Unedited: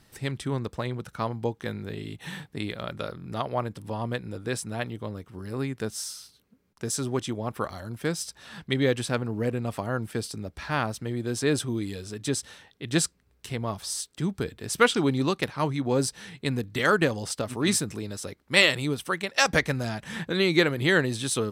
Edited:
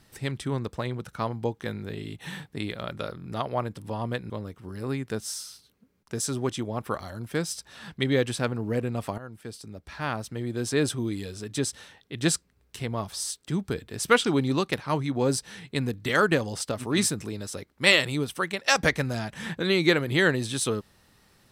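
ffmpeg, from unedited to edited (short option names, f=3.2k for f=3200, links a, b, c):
-filter_complex "[0:a]asplit=3[a][b][c];[a]atrim=end=4.302[d];[b]atrim=start=4.998:end=9.88,asetpts=PTS-STARTPTS,afade=t=out:st=4.878:d=0.004:c=hsin:silence=0.188365[e];[c]atrim=start=9.88,asetpts=PTS-STARTPTS,afade=t=in:d=1.46:silence=0.188365[f];[e][f]concat=n=2:v=0:a=1[g];[d][g]acrossfade=d=0.004:c1=hsin:c2=hsin"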